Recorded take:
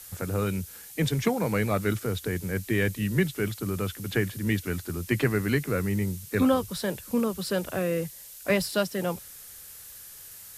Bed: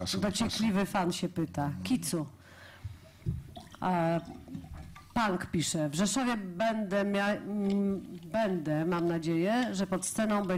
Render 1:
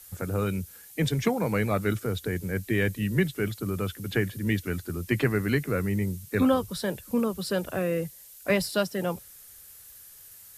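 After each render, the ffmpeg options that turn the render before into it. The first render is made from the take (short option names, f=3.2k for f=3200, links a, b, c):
-af "afftdn=nr=6:nf=-46"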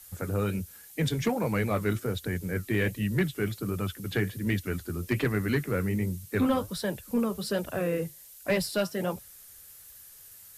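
-af "flanger=delay=1:depth=9.5:regen=-66:speed=1.3:shape=sinusoidal,aeval=exprs='0.2*(cos(1*acos(clip(val(0)/0.2,-1,1)))-cos(1*PI/2))+0.0282*(cos(5*acos(clip(val(0)/0.2,-1,1)))-cos(5*PI/2))+0.00708*(cos(7*acos(clip(val(0)/0.2,-1,1)))-cos(7*PI/2))':c=same"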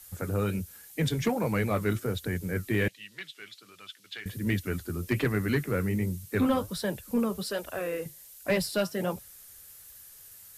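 -filter_complex "[0:a]asettb=1/sr,asplit=3[a][b][c];[a]atrim=end=2.884[d];[b]atrim=start=2.88:end=4.26,asetpts=PTS-STARTPTS,afade=t=in:d=0.004:c=qsin,afade=t=out:st=1.376:d=0.004:c=qsin,bandpass=f=3.6k:t=q:w=1.5[e];[c]atrim=start=4.256[f];[d][e]acrossfade=d=0.004:c1=hsin:c2=qsin[g];[g][f]acrossfade=d=0.004:c1=qsin:c2=hsin,asettb=1/sr,asplit=3[h][i][j];[h]atrim=end=7.434[k];[i]atrim=start=7.43:end=8.06,asetpts=PTS-STARTPTS,afade=t=in:d=0.004:c=qsin,afade=t=out:st=0.626:d=0.004:c=qsin,equalizer=f=150:t=o:w=1.9:g=-13.5[l];[j]atrim=start=8.056[m];[k][l]acrossfade=d=0.004:c1=hsin:c2=qsin[n];[n][m]acrossfade=d=0.004:c1=qsin:c2=hsin"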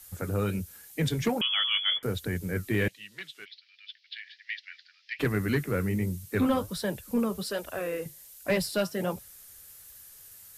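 -filter_complex "[0:a]asettb=1/sr,asplit=3[a][b][c];[a]atrim=end=1.414[d];[b]atrim=start=1.41:end=2.03,asetpts=PTS-STARTPTS,afade=t=in:d=0.004:c=qsin,afade=t=out:st=0.616:d=0.004:c=qsin,lowpass=f=3k:t=q:w=0.5098,lowpass=f=3k:t=q:w=0.6013,lowpass=f=3k:t=q:w=0.9,lowpass=f=3k:t=q:w=2.563,afreqshift=-3500[e];[c]atrim=start=2.026[f];[d][e]acrossfade=d=0.004:c1=hsin:c2=qsin[g];[g][f]acrossfade=d=0.004:c1=qsin:c2=hsin,asplit=3[h][i][j];[h]afade=t=out:st=3.44:d=0.02[k];[i]asuperpass=centerf=3000:order=12:qfactor=0.87,afade=t=in:st=3.44:d=0.02,afade=t=out:st=5.19:d=0.02[l];[j]afade=t=in:st=5.19:d=0.02[m];[k][l][m]amix=inputs=3:normalize=0"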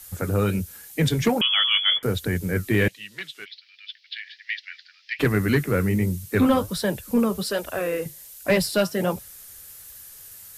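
-af "volume=6.5dB"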